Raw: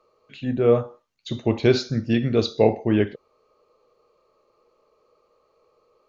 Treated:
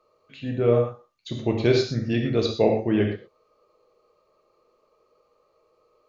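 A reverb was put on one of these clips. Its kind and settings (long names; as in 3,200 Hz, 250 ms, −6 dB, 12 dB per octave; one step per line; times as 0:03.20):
reverb whose tail is shaped and stops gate 140 ms flat, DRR 3 dB
level −3 dB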